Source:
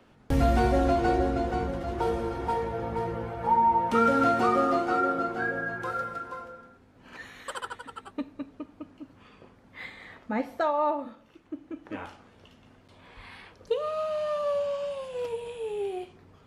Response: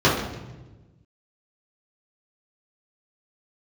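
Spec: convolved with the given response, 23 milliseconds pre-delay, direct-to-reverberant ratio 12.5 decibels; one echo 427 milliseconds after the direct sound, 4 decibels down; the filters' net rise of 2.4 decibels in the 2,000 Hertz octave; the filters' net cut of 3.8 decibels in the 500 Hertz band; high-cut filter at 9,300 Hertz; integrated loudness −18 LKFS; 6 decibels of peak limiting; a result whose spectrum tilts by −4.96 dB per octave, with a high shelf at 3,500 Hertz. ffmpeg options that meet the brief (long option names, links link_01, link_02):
-filter_complex "[0:a]lowpass=9300,equalizer=frequency=500:width_type=o:gain=-5,equalizer=frequency=2000:width_type=o:gain=5.5,highshelf=frequency=3500:gain=-7,alimiter=limit=-19dB:level=0:latency=1,aecho=1:1:427:0.631,asplit=2[link_01][link_02];[1:a]atrim=start_sample=2205,adelay=23[link_03];[link_02][link_03]afir=irnorm=-1:irlink=0,volume=-34dB[link_04];[link_01][link_04]amix=inputs=2:normalize=0,volume=11.5dB"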